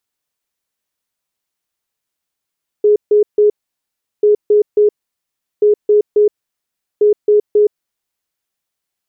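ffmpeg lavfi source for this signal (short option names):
-f lavfi -i "aevalsrc='0.473*sin(2*PI*418*t)*clip(min(mod(mod(t,1.39),0.27),0.12-mod(mod(t,1.39),0.27))/0.005,0,1)*lt(mod(t,1.39),0.81)':d=5.56:s=44100"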